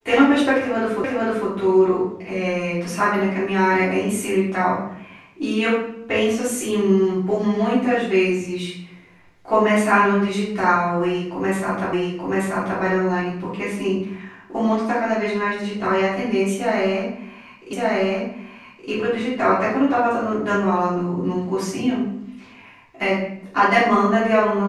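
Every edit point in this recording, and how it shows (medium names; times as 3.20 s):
1.04 s: repeat of the last 0.45 s
11.93 s: repeat of the last 0.88 s
17.73 s: repeat of the last 1.17 s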